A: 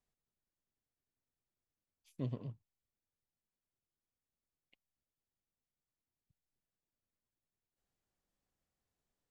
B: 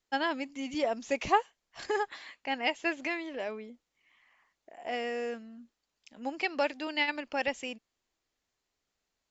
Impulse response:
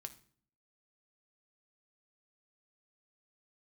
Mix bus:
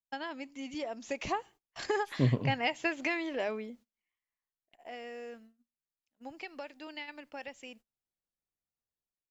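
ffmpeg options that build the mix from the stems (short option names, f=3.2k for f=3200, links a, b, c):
-filter_complex "[0:a]volume=2.5dB,asplit=2[a][b];[b]volume=-12.5dB[c];[1:a]acompressor=threshold=-30dB:ratio=5,volume=-6.5dB,afade=t=out:st=4.01:d=0.2:silence=0.251189,asplit=2[d][e];[e]volume=-10.5dB[f];[2:a]atrim=start_sample=2205[g];[c][f]amix=inputs=2:normalize=0[h];[h][g]afir=irnorm=-1:irlink=0[i];[a][d][i]amix=inputs=3:normalize=0,dynaudnorm=f=900:g=3:m=8.5dB,agate=range=-23dB:threshold=-55dB:ratio=16:detection=peak"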